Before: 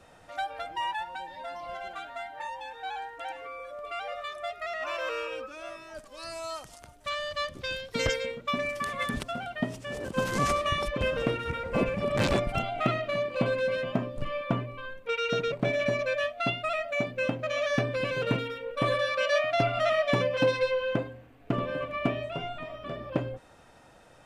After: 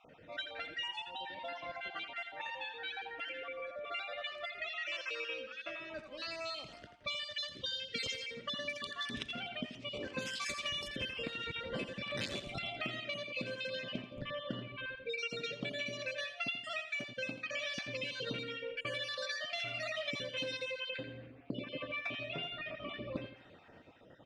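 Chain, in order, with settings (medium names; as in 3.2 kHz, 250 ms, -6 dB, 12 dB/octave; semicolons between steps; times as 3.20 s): random holes in the spectrogram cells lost 36%; frequency weighting D; level-controlled noise filter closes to 1.1 kHz, open at -22 dBFS; peaking EQ 1 kHz -9.5 dB 1.9 oct; compression 5:1, threshold -44 dBFS, peak gain reduction 21 dB; on a send: feedback delay 84 ms, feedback 41%, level -10.5 dB; on the sum: trim +5 dB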